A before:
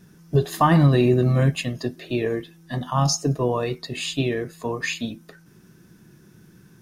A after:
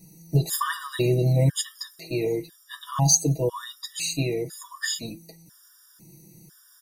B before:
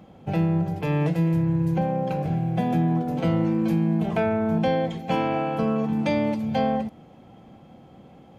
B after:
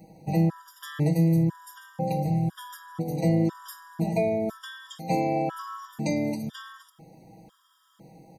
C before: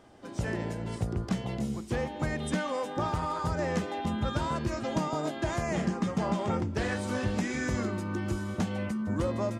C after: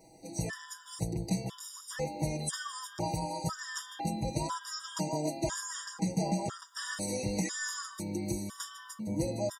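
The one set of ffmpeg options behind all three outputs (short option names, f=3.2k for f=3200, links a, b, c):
-af "aecho=1:1:6.2:0.78,aexciter=amount=3.3:drive=7.1:freq=4k,afftfilt=real='re*gt(sin(2*PI*1*pts/sr)*(1-2*mod(floor(b*sr/1024/960),2)),0)':imag='im*gt(sin(2*PI*1*pts/sr)*(1-2*mod(floor(b*sr/1024/960),2)),0)':win_size=1024:overlap=0.75,volume=-4dB"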